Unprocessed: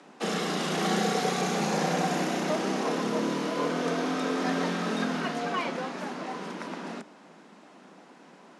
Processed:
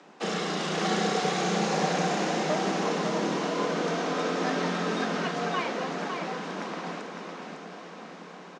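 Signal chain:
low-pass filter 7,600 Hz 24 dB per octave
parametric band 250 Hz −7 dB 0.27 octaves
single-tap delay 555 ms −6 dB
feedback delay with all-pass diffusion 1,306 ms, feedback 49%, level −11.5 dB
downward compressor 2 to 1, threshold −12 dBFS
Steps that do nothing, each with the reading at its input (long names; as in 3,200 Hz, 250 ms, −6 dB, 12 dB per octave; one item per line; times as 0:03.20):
downward compressor, threshold −12 dBFS: peak of its input −13.5 dBFS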